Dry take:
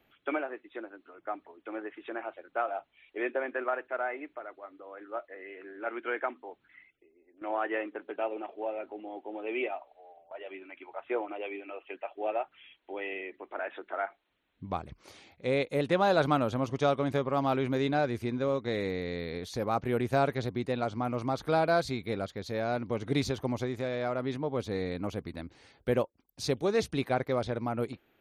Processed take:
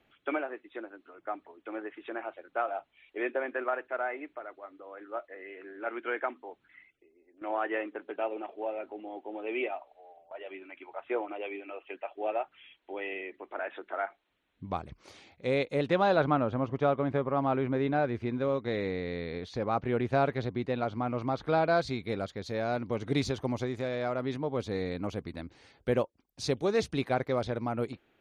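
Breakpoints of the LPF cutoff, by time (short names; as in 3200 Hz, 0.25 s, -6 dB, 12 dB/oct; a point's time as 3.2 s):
15.48 s 8800 Hz
16.08 s 4500 Hz
16.28 s 2100 Hz
17.79 s 2100 Hz
18.54 s 3900 Hz
21.61 s 3900 Hz
22.11 s 8800 Hz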